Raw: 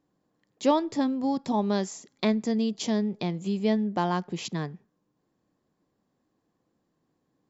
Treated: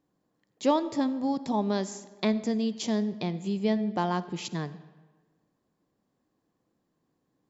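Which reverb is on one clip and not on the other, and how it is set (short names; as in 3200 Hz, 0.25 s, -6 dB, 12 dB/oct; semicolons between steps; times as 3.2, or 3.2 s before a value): digital reverb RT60 1.4 s, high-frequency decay 0.7×, pre-delay 25 ms, DRR 15.5 dB; gain -1.5 dB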